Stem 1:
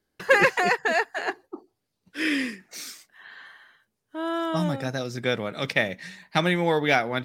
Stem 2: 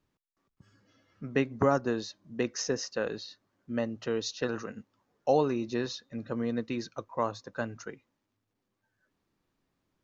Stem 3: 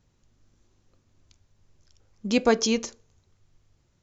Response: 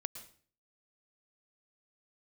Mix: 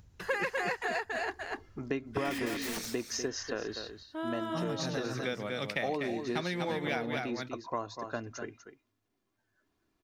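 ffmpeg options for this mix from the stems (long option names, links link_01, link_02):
-filter_complex "[0:a]highpass=frequency=92:width=0.5412,highpass=frequency=92:width=1.3066,volume=-4.5dB,asplit=2[link_01][link_02];[link_02]volume=-5dB[link_03];[1:a]aecho=1:1:2.9:0.45,adelay=550,volume=0dB,asplit=2[link_04][link_05];[link_05]volume=-11.5dB[link_06];[2:a]equalizer=frequency=68:width=0.76:gain=13.5,acompressor=mode=upward:threshold=-42dB:ratio=2.5,aeval=exprs='(mod(16.8*val(0)+1,2)-1)/16.8':channel_layout=same,volume=-8dB,asplit=2[link_07][link_08];[link_08]volume=-14dB[link_09];[link_03][link_06][link_09]amix=inputs=3:normalize=0,aecho=0:1:245:1[link_10];[link_01][link_04][link_07][link_10]amix=inputs=4:normalize=0,acompressor=threshold=-32dB:ratio=3"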